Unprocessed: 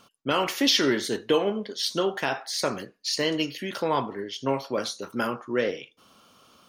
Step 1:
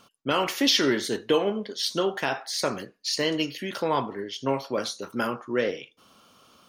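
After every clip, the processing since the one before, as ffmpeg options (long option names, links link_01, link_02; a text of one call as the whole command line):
ffmpeg -i in.wav -af anull out.wav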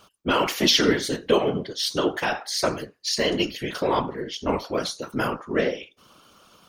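ffmpeg -i in.wav -af "afftfilt=real='hypot(re,im)*cos(2*PI*random(0))':imag='hypot(re,im)*sin(2*PI*random(1))':win_size=512:overlap=0.75,volume=8.5dB" out.wav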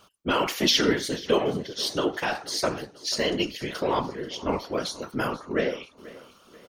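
ffmpeg -i in.wav -af "aecho=1:1:486|972|1458:0.112|0.0471|0.0198,volume=-2.5dB" out.wav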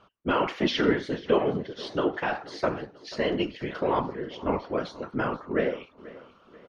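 ffmpeg -i in.wav -af "lowpass=2200" out.wav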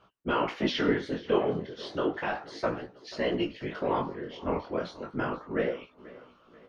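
ffmpeg -i in.wav -af "flanger=delay=16:depth=7.5:speed=0.33" out.wav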